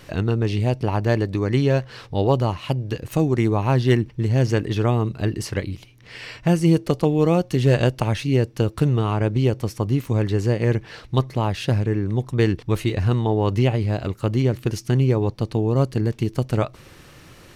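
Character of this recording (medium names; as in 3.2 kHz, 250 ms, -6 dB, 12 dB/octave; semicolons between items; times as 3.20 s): noise floor -47 dBFS; spectral tilt -7.5 dB/octave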